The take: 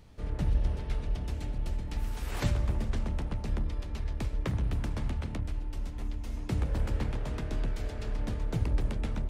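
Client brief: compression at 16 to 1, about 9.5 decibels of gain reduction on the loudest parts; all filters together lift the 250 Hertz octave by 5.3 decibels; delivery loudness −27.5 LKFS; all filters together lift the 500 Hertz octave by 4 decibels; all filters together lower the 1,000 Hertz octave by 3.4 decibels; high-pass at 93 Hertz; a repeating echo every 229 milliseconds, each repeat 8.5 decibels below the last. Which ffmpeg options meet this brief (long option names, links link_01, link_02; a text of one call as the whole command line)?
ffmpeg -i in.wav -af "highpass=93,equalizer=frequency=250:width_type=o:gain=6.5,equalizer=frequency=500:width_type=o:gain=4.5,equalizer=frequency=1000:width_type=o:gain=-6.5,acompressor=threshold=-34dB:ratio=16,aecho=1:1:229|458|687|916:0.376|0.143|0.0543|0.0206,volume=12.5dB" out.wav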